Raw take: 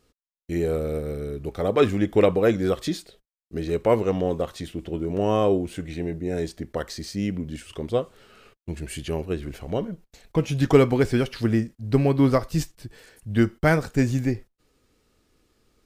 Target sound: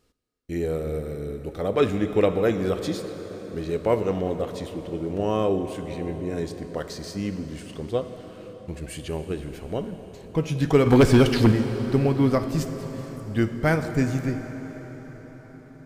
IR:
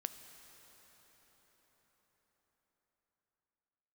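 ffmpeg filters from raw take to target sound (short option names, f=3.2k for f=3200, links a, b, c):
-filter_complex "[0:a]asettb=1/sr,asplit=3[a][b][c];[a]atrim=end=10.864[d];[b]atrim=start=10.86:end=11.52,asetpts=PTS-STARTPTS,afade=t=in:d=0.004:c=qsin,afade=t=out:st=0.656:d=0.004:c=qsin,aeval=exprs='0.447*sin(PI/2*2.24*val(0)/0.447)':c=same[e];[c]atrim=start=11.516[f];[d][e]acrossfade=d=0.004:c1=hsin:c2=qsin[g];[g][f]acrossfade=d=0.004:c1=qsin:c2=hsin[h];[1:a]atrim=start_sample=2205[i];[h][i]afir=irnorm=-1:irlink=0"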